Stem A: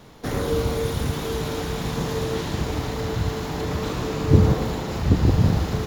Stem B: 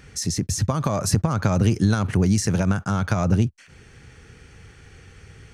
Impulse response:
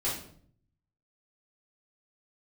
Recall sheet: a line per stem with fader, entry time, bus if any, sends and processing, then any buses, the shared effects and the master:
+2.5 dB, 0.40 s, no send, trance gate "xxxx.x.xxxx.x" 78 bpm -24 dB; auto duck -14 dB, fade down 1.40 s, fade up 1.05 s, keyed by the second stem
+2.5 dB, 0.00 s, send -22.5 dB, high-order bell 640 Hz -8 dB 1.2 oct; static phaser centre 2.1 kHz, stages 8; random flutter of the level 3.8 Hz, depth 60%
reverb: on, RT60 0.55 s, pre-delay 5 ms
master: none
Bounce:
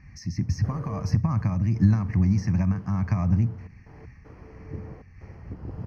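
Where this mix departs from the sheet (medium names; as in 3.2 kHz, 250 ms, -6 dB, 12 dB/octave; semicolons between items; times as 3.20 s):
stem A +2.5 dB -> -7.5 dB; master: extra boxcar filter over 12 samples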